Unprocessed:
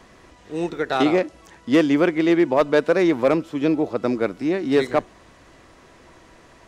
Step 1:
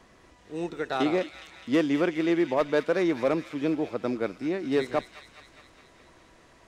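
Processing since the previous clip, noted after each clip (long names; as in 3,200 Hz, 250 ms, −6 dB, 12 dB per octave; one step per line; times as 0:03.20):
delay with a high-pass on its return 207 ms, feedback 66%, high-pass 2,100 Hz, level −7.5 dB
level −7 dB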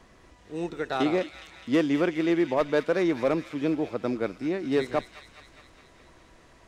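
low-shelf EQ 87 Hz +6.5 dB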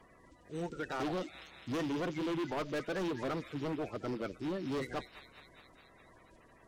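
spectral magnitudes quantised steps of 30 dB
gain into a clipping stage and back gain 27 dB
level −5.5 dB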